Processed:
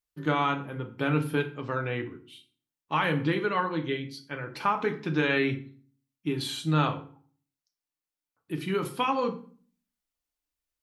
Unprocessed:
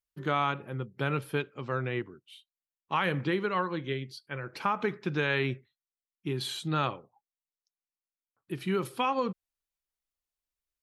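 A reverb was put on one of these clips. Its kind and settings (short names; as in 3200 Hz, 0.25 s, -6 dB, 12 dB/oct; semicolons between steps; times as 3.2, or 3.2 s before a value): FDN reverb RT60 0.44 s, low-frequency decay 1.45×, high-frequency decay 0.8×, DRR 4 dB; gain +1 dB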